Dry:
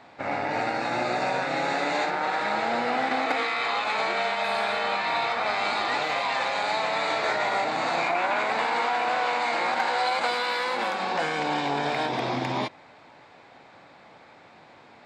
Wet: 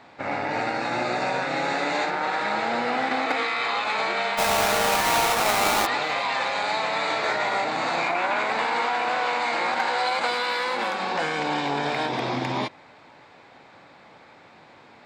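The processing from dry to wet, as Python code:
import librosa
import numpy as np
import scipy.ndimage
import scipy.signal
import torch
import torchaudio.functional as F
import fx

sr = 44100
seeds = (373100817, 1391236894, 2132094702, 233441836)

y = fx.halfwave_hold(x, sr, at=(4.37, 5.85), fade=0.02)
y = fx.peak_eq(y, sr, hz=690.0, db=-2.5, octaves=0.37)
y = F.gain(torch.from_numpy(y), 1.5).numpy()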